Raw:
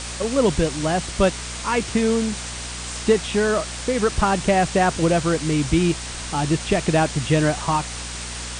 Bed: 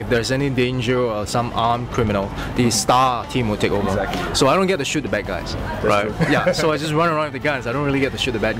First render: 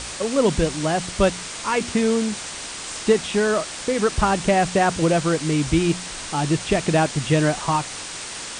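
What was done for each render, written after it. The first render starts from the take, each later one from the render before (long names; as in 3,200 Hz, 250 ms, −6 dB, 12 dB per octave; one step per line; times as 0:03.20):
hum removal 60 Hz, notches 4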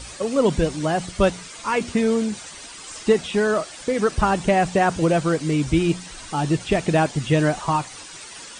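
broadband denoise 11 dB, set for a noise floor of −33 dBFS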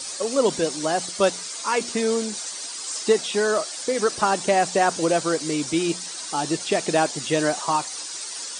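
high-pass filter 310 Hz 12 dB per octave
high shelf with overshoot 3,600 Hz +6.5 dB, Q 1.5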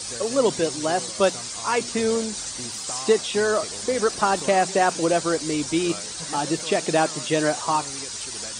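mix in bed −22 dB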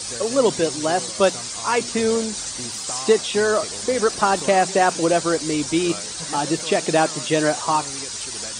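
level +2.5 dB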